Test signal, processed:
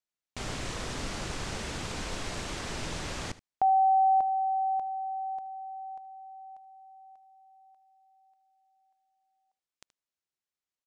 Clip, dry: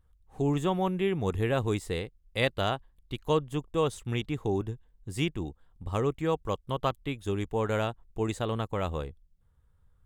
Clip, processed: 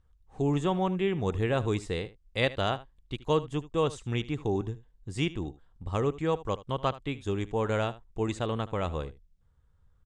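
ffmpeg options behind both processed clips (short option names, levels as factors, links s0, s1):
-af "lowpass=f=8200:w=0.5412,lowpass=f=8200:w=1.3066,aecho=1:1:76:0.133"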